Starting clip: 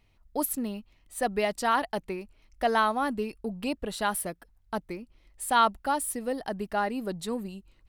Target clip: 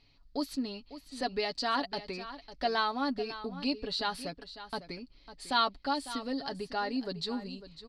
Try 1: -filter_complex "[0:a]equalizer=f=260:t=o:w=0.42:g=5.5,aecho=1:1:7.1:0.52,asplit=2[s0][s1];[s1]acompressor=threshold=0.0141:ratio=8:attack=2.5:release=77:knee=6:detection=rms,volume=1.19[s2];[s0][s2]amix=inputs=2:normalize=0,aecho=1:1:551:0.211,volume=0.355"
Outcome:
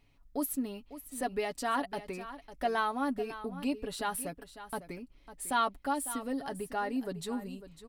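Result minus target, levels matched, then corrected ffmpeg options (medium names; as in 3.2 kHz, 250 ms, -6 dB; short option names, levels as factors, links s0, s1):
4 kHz band -8.5 dB
-filter_complex "[0:a]lowpass=f=4500:t=q:w=7.3,equalizer=f=260:t=o:w=0.42:g=5.5,aecho=1:1:7.1:0.52,asplit=2[s0][s1];[s1]acompressor=threshold=0.0141:ratio=8:attack=2.5:release=77:knee=6:detection=rms,volume=1.19[s2];[s0][s2]amix=inputs=2:normalize=0,aecho=1:1:551:0.211,volume=0.355"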